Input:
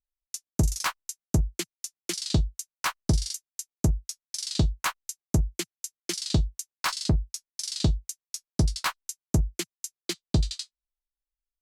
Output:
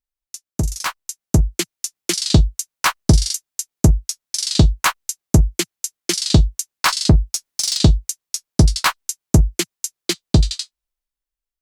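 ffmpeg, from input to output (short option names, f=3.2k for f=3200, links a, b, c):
-filter_complex "[0:a]asettb=1/sr,asplit=3[a][b][c];[a]atrim=end=7.334[d];[b]atrim=start=7.33:end=7.77,asetpts=PTS-STARTPTS,afade=t=in:d=0.004:c=qsin,afade=t=out:st=0.436:d=0.004:c=qsin,aeval=exprs='0.106*(cos(1*acos(clip(val(0)/0.106,-1,1)))-cos(1*PI/2))+0.0133*(cos(5*acos(clip(val(0)/0.106,-1,1)))-cos(5*PI/2))':c=same[e];[c]atrim=start=7.766[f];[d][e]acrossfade=d=0.004:c1=hsin:c2=qsin[g];[g][f]acrossfade=d=0.004:c1=qsin:c2=hsin,dynaudnorm=f=260:g=9:m=11.5dB,volume=1.5dB"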